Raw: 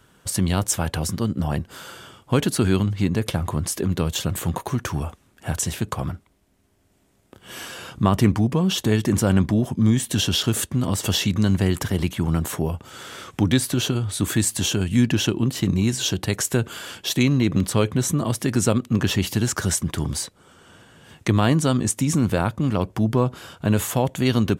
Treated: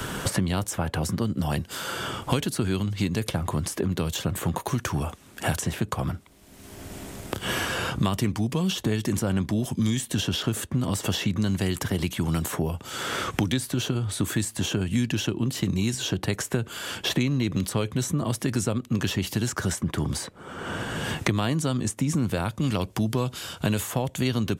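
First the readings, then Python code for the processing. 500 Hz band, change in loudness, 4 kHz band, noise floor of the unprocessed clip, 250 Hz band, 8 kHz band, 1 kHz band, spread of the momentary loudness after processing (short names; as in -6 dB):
-4.5 dB, -5.0 dB, -3.5 dB, -61 dBFS, -5.0 dB, -5.5 dB, -2.5 dB, 5 LU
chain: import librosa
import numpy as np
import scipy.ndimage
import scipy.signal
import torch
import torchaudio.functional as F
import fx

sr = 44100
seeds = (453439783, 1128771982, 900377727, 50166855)

y = fx.band_squash(x, sr, depth_pct=100)
y = y * 10.0 ** (-5.5 / 20.0)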